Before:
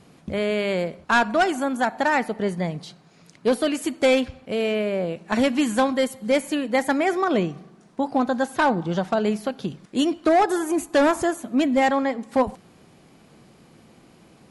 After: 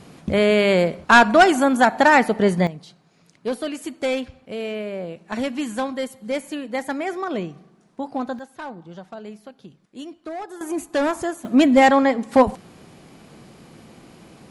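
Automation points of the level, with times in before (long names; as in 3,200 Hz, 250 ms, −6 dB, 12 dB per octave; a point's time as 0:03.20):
+7 dB
from 0:02.67 −5 dB
from 0:08.39 −14.5 dB
from 0:10.61 −3 dB
from 0:11.45 +6 dB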